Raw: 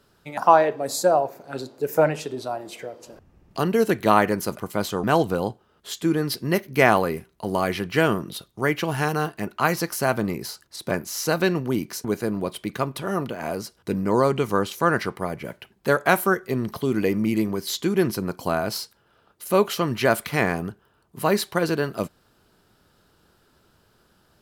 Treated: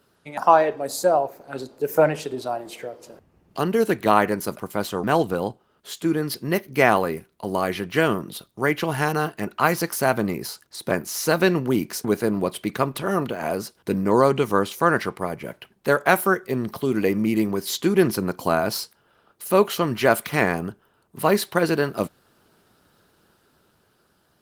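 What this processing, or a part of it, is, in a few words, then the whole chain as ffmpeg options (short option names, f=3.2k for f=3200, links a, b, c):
video call: -af "highpass=f=120:p=1,dynaudnorm=f=270:g=11:m=5.5dB" -ar 48000 -c:a libopus -b:a 24k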